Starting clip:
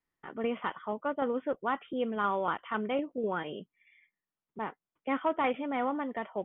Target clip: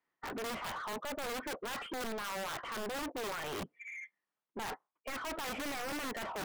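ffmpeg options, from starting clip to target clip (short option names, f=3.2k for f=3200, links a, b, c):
-filter_complex "[0:a]afftdn=nr=24:nf=-54,areverse,acompressor=threshold=-44dB:ratio=12,areverse,asplit=2[a][b];[b]highpass=f=720:p=1,volume=38dB,asoftclip=type=tanh:threshold=-33dB[c];[a][c]amix=inputs=2:normalize=0,lowpass=f=1.5k:p=1,volume=-6dB,aeval=exprs='(mod(70.8*val(0)+1,2)-1)/70.8':c=same,volume=1.5dB"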